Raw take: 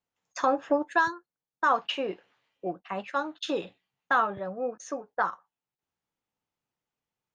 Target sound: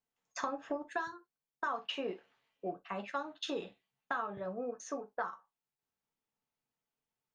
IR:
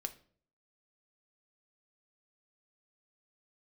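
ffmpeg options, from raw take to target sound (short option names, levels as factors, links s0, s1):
-filter_complex "[0:a]acompressor=threshold=0.0355:ratio=6[s0];[1:a]atrim=start_sample=2205,atrim=end_sample=3087[s1];[s0][s1]afir=irnorm=-1:irlink=0,volume=0.75"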